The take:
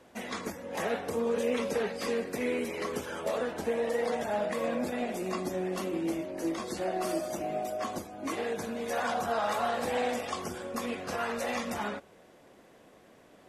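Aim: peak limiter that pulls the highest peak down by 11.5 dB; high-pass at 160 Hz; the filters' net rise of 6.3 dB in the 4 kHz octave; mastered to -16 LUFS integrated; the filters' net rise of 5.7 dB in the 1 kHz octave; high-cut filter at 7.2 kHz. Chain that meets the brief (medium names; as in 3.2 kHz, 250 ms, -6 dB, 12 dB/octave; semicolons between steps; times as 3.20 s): high-pass 160 Hz; low-pass 7.2 kHz; peaking EQ 1 kHz +7.5 dB; peaking EQ 4 kHz +8 dB; trim +18.5 dB; peak limiter -7.5 dBFS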